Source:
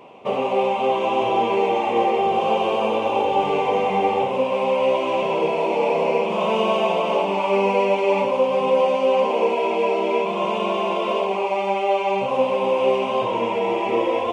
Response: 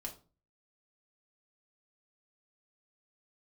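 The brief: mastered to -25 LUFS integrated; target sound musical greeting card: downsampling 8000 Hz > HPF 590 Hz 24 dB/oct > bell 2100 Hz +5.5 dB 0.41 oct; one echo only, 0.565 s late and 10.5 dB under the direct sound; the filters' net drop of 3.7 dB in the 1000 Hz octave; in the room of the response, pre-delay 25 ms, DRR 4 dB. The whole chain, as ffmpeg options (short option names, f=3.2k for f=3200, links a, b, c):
-filter_complex "[0:a]equalizer=f=1k:t=o:g=-4.5,aecho=1:1:565:0.299,asplit=2[a][b];[1:a]atrim=start_sample=2205,adelay=25[c];[b][c]afir=irnorm=-1:irlink=0,volume=-1.5dB[d];[a][d]amix=inputs=2:normalize=0,aresample=8000,aresample=44100,highpass=f=590:w=0.5412,highpass=f=590:w=1.3066,equalizer=f=2.1k:t=o:w=0.41:g=5.5,volume=-2dB"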